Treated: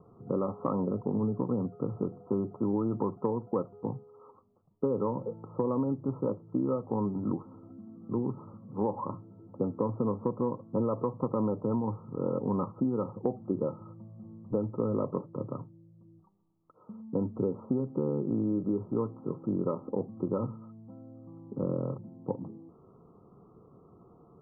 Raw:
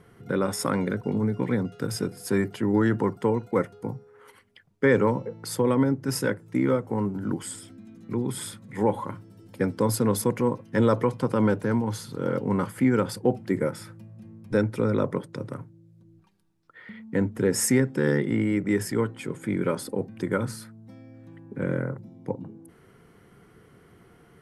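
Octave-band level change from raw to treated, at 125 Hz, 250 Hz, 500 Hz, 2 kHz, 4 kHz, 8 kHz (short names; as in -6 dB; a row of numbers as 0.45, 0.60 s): -7.0 dB, -5.5 dB, -6.0 dB, under -35 dB, under -40 dB, under -40 dB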